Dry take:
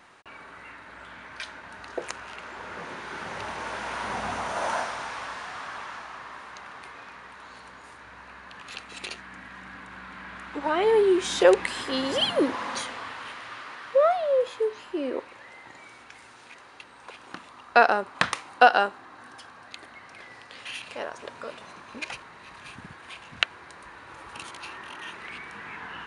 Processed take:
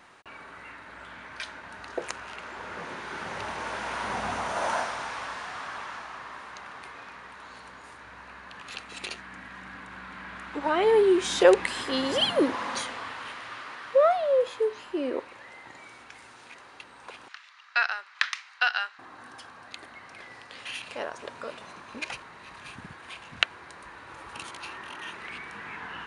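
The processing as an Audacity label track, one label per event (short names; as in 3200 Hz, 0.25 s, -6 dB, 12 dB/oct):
17.280000	18.990000	Chebyshev band-pass 1700–5600 Hz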